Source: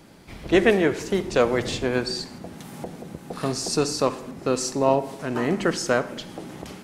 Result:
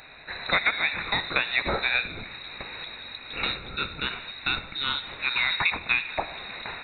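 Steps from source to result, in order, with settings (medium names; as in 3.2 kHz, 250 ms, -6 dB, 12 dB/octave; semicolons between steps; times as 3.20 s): FFT filter 250 Hz 0 dB, 850 Hz -21 dB, 1.5 kHz +15 dB; compression 6:1, threshold -17 dBFS, peak gain reduction 12.5 dB; frequency inversion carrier 4 kHz; trim -3 dB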